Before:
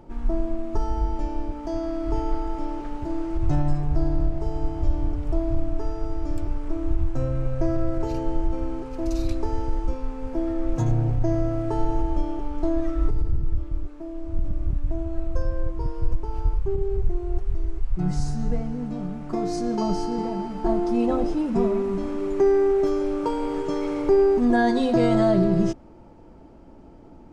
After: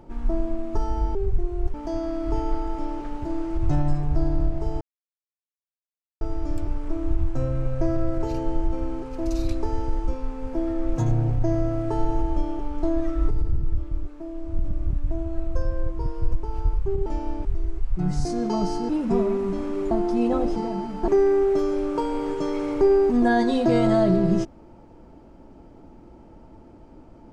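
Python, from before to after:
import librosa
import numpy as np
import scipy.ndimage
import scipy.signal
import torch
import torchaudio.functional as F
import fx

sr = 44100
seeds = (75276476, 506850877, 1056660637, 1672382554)

y = fx.edit(x, sr, fx.swap(start_s=1.15, length_s=0.39, other_s=16.86, other_length_s=0.59),
    fx.silence(start_s=4.61, length_s=1.4),
    fx.cut(start_s=18.25, length_s=1.28),
    fx.swap(start_s=20.17, length_s=0.52, other_s=21.34, other_length_s=1.02), tone=tone)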